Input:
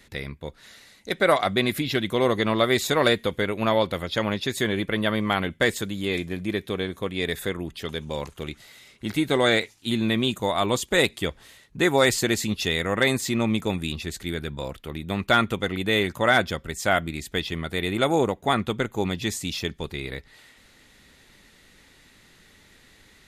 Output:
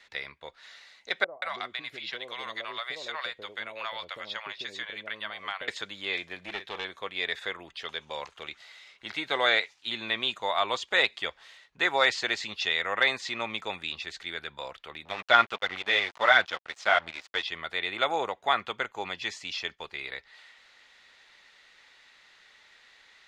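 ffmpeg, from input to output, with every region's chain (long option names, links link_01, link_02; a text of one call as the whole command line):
ffmpeg -i in.wav -filter_complex "[0:a]asettb=1/sr,asplit=3[link_01][link_02][link_03];[link_01]atrim=end=1.244[link_04];[link_02]atrim=start=1.24:end=5.68,asetpts=PTS-STARTPTS,afade=type=in:duration=0.004:curve=qsin,afade=type=out:start_time=4.436:duration=0.004:curve=qsin,acrossover=split=1400|7600[link_05][link_06][link_07];[link_05]acompressor=threshold=-31dB:ratio=4[link_08];[link_06]acompressor=threshold=-35dB:ratio=4[link_09];[link_07]acompressor=threshold=-54dB:ratio=4[link_10];[link_08][link_09][link_10]amix=inputs=3:normalize=0,acrossover=split=610[link_11][link_12];[link_12]adelay=180[link_13];[link_11][link_13]amix=inputs=2:normalize=0,atrim=end_sample=195804[link_14];[link_03]atrim=start=5.676[link_15];[link_04][link_14]acrossfade=duration=0.004:curve1=hsin:curve2=qsin[link_16];[link_16][link_15]acrossfade=duration=0.004:curve1=qsin:curve2=hsin,asettb=1/sr,asplit=3[link_17][link_18][link_19];[link_17]atrim=end=6.384[link_20];[link_18]atrim=start=6.38:end=6.85,asetpts=PTS-STARTPTS,afade=type=in:duration=0.004:curve=qsin,afade=type=out:start_time=0.466:duration=0.004:curve=qsin,asplit=2[link_21][link_22];[link_22]adelay=44,volume=-12dB[link_23];[link_21][link_23]amix=inputs=2:normalize=0,atrim=end_sample=20727,aeval=exprs='clip(val(0),-1,0.0422)':channel_layout=same[link_24];[link_19]atrim=start=6.846[link_25];[link_20][link_24]acrossfade=duration=0.004:curve1=hsin:curve2=qsin[link_26];[link_26][link_25]acrossfade=duration=0.004:curve1=qsin:curve2=hsin,asettb=1/sr,asplit=3[link_27][link_28][link_29];[link_27]atrim=end=15.054[link_30];[link_28]atrim=start=15.05:end=17.43,asetpts=PTS-STARTPTS,afade=type=in:duration=0.004:curve=qsin,afade=type=out:start_time=2.376:duration=0.004:curve=qsin,flanger=delay=0.5:depth=8.2:regen=28:speed=1.5:shape=sinusoidal,acontrast=40,aeval=exprs='sgn(val(0))*max(abs(val(0))-0.0188,0)':channel_layout=same[link_31];[link_29]atrim=start=17.426[link_32];[link_30][link_31]acrossfade=duration=0.004:curve1=hsin:curve2=qsin[link_33];[link_33][link_32]acrossfade=duration=0.004:curve1=qsin:curve2=hsin,asettb=1/sr,asplit=3[link_34][link_35][link_36];[link_34]atrim=end=18.584[link_37];[link_35]atrim=start=18.58:end=20.04,asetpts=PTS-STARTPTS,afade=type=in:duration=0.004:curve=qsin,afade=type=out:start_time=1.456:duration=0.004:curve=qsin,bandreject=frequency=3700:width=11,agate=range=-8dB:threshold=-44dB:ratio=16:release=100:detection=peak[link_38];[link_36]atrim=start=20.036[link_39];[link_37][link_38]acrossfade=duration=0.004:curve1=hsin:curve2=qsin[link_40];[link_40][link_39]acrossfade=duration=0.004:curve1=qsin:curve2=hsin,acrossover=split=6600[link_41][link_42];[link_42]acompressor=threshold=-49dB:ratio=4:attack=1:release=60[link_43];[link_41][link_43]amix=inputs=2:normalize=0,acrossover=split=600 6000:gain=0.0708 1 0.0631[link_44][link_45][link_46];[link_44][link_45][link_46]amix=inputs=3:normalize=0" out.wav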